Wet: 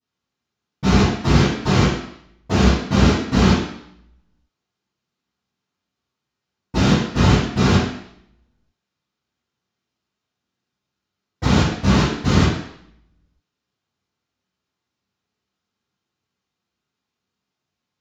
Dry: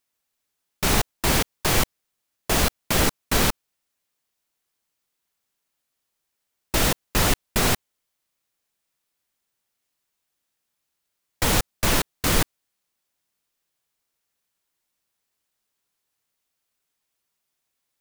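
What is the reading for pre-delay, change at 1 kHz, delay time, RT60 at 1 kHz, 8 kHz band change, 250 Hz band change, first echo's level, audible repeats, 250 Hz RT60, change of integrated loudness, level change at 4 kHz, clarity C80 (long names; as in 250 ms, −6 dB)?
3 ms, +3.5 dB, no echo audible, 0.75 s, −7.5 dB, +11.5 dB, no echo audible, no echo audible, 0.70 s, +4.5 dB, +0.5 dB, 4.5 dB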